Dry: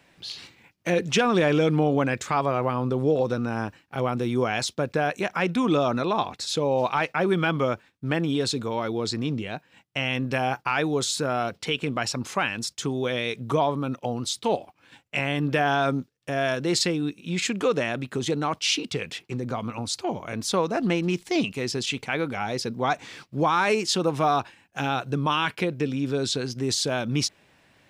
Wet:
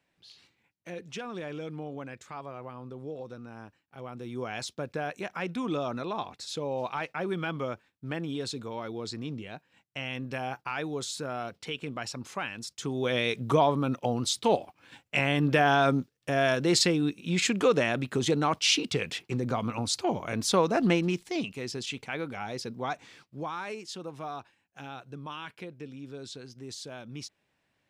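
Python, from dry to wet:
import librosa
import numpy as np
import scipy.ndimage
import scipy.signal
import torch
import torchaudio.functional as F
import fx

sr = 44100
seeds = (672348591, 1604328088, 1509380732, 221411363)

y = fx.gain(x, sr, db=fx.line((3.96, -17.0), (4.6, -9.0), (12.67, -9.0), (13.17, 0.0), (20.93, 0.0), (21.33, -7.5), (22.76, -7.5), (23.77, -16.0)))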